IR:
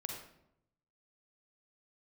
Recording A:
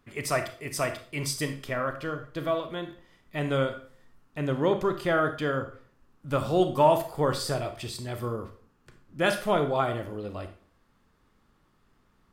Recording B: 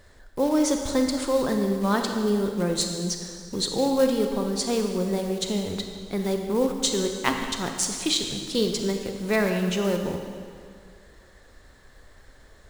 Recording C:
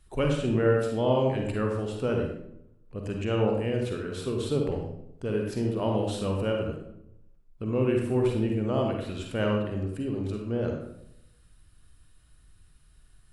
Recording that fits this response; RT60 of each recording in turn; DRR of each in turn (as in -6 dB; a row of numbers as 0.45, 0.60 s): C; 0.45, 2.1, 0.80 s; 7.5, 4.0, 1.0 dB